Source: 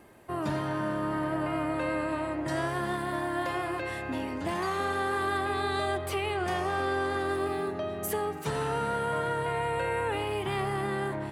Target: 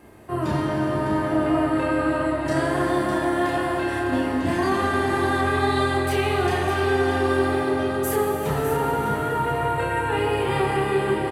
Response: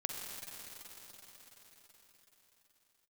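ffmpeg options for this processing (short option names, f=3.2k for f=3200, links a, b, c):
-filter_complex "[0:a]asettb=1/sr,asplit=3[a][b][c];[a]atrim=end=8.284[d];[b]atrim=start=8.28:end=9.78,asetpts=PTS-STARTPTS,afade=t=in:d=0.004:c=qsin,afade=t=out:st=1.496:d=0.004:c=qsin,equalizer=f=6.8k:w=0.45:g=-6[e];[c]atrim=start=9.776[f];[d][e]acrossfade=d=0.004:c1=hsin:c2=qsin[g];[g][f]acrossfade=d=0.004:c1=qsin:c2=hsin,aecho=1:1:605:0.355,asplit=2[h][i];[1:a]atrim=start_sample=2205,lowshelf=f=410:g=9.5,adelay=31[j];[i][j]afir=irnorm=-1:irlink=0,volume=-1dB[k];[h][k]amix=inputs=2:normalize=0,volume=2.5dB"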